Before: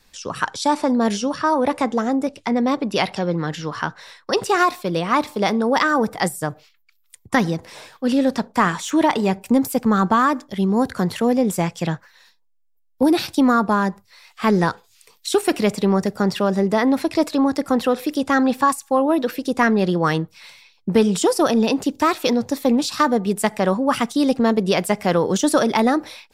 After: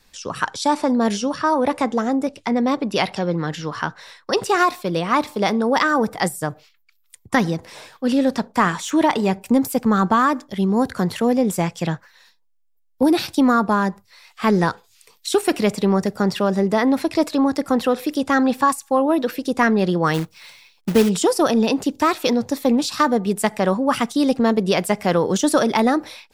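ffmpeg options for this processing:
-filter_complex "[0:a]asplit=3[s0][s1][s2];[s0]afade=t=out:st=20.13:d=0.02[s3];[s1]acrusher=bits=3:mode=log:mix=0:aa=0.000001,afade=t=in:st=20.13:d=0.02,afade=t=out:st=21.08:d=0.02[s4];[s2]afade=t=in:st=21.08:d=0.02[s5];[s3][s4][s5]amix=inputs=3:normalize=0"

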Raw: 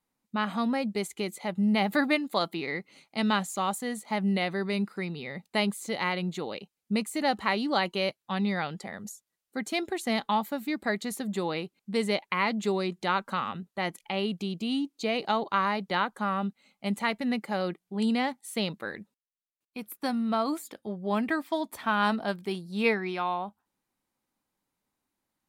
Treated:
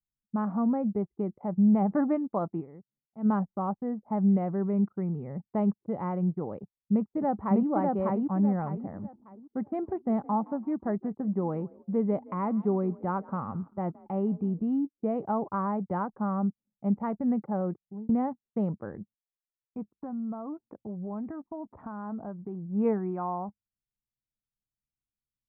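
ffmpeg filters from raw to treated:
-filter_complex "[0:a]asplit=2[s0][s1];[s1]afade=t=in:st=6.56:d=0.01,afade=t=out:st=7.67:d=0.01,aecho=0:1:600|1200|1800|2400:0.891251|0.267375|0.0802126|0.0240638[s2];[s0][s2]amix=inputs=2:normalize=0,asplit=3[s3][s4][s5];[s3]afade=t=out:st=8.88:d=0.02[s6];[s4]asplit=4[s7][s8][s9][s10];[s8]adelay=168,afreqshift=39,volume=0.0891[s11];[s9]adelay=336,afreqshift=78,volume=0.0394[s12];[s10]adelay=504,afreqshift=117,volume=0.0172[s13];[s7][s11][s12][s13]amix=inputs=4:normalize=0,afade=t=in:st=8.88:d=0.02,afade=t=out:st=14.59:d=0.02[s14];[s5]afade=t=in:st=14.59:d=0.02[s15];[s6][s14][s15]amix=inputs=3:normalize=0,asettb=1/sr,asplit=3[s16][s17][s18];[s16]atrim=end=19.874[s19];[s17]atrim=start=19.87:end=22.66,asetpts=PTS-STARTPTS,afade=t=in:d=0.004:c=qsin,afade=t=out:st=2.786:d=0.004:c=qsin,acompressor=threshold=0.0126:ratio=2.5:attack=3.2:release=140:knee=1:detection=peak[s20];[s18]atrim=start=22.656[s21];[s19][s20]acrossfade=d=0.004:c1=hsin:c2=qsin[s22];[s22][s21]acrossfade=d=0.004:c1=qsin:c2=hsin,asplit=4[s23][s24][s25][s26];[s23]atrim=end=2.84,asetpts=PTS-STARTPTS,afade=t=out:st=2.6:d=0.24:c=exp:silence=0.211349[s27];[s24]atrim=start=2.84:end=3.02,asetpts=PTS-STARTPTS,volume=0.211[s28];[s25]atrim=start=3.02:end=18.09,asetpts=PTS-STARTPTS,afade=t=in:d=0.24:c=exp:silence=0.211349,afade=t=out:st=14.47:d=0.6:c=qsin[s29];[s26]atrim=start=18.09,asetpts=PTS-STARTPTS,afade=t=in:d=0.004:c=hsin[s30];[s27][s28][s29][s30]concat=n=4:v=0:a=1,lowpass=f=1100:w=0.5412,lowpass=f=1100:w=1.3066,anlmdn=0.001,equalizer=f=97:t=o:w=2.1:g=13,volume=0.75"

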